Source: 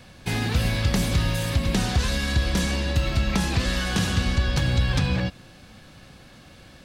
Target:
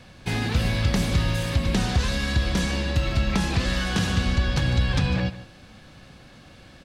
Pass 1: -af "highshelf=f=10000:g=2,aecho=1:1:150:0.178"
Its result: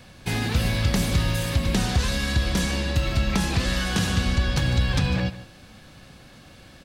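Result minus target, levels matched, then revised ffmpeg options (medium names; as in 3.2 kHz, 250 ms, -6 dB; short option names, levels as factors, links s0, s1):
8 kHz band +3.0 dB
-af "highshelf=f=10000:g=-9.5,aecho=1:1:150:0.178"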